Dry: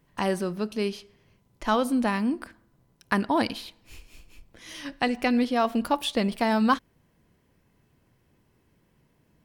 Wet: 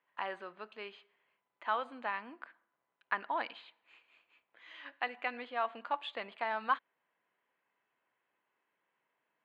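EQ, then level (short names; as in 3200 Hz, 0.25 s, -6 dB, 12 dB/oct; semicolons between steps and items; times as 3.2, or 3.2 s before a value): running mean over 8 samples; HPF 1000 Hz 12 dB/oct; air absorption 170 m; -3.0 dB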